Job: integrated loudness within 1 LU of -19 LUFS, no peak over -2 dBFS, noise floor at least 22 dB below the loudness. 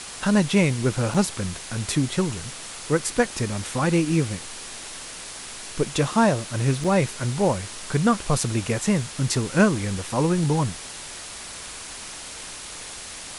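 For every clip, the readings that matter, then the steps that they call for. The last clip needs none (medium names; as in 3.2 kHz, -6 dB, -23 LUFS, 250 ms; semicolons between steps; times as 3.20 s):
dropouts 2; longest dropout 4.8 ms; noise floor -38 dBFS; noise floor target -46 dBFS; loudness -23.5 LUFS; peak level -4.5 dBFS; loudness target -19.0 LUFS
-> interpolate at 1.14/6.84 s, 4.8 ms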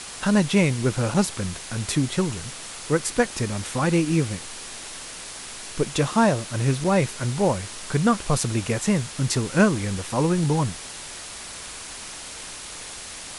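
dropouts 0; noise floor -38 dBFS; noise floor target -46 dBFS
-> noise reduction 8 dB, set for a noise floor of -38 dBFS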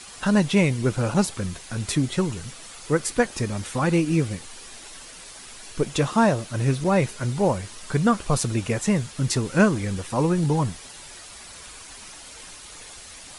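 noise floor -43 dBFS; noise floor target -46 dBFS
-> noise reduction 6 dB, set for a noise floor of -43 dBFS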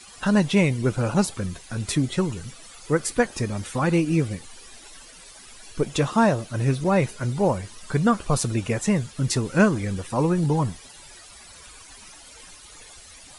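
noise floor -46 dBFS; loudness -23.5 LUFS; peak level -4.5 dBFS; loudness target -19.0 LUFS
-> trim +4.5 dB; peak limiter -2 dBFS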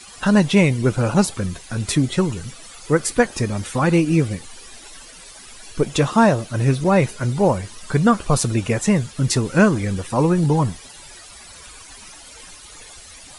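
loudness -19.0 LUFS; peak level -2.0 dBFS; noise floor -42 dBFS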